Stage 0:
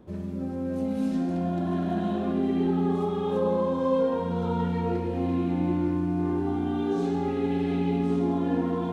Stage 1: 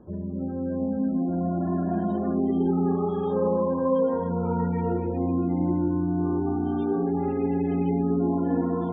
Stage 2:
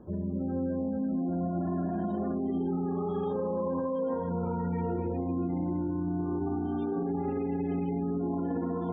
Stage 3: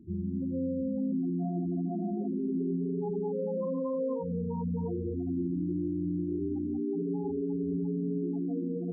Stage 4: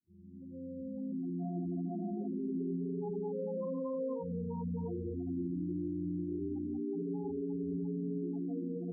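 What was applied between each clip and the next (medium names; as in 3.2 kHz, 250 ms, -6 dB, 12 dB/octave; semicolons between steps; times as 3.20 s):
spectral gate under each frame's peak -30 dB strong; treble shelf 3 kHz -9.5 dB; trim +1.5 dB
peak limiter -24 dBFS, peak gain reduction 11.5 dB
median filter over 25 samples; loudest bins only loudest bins 8
fade-in on the opening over 1.56 s; trim -5 dB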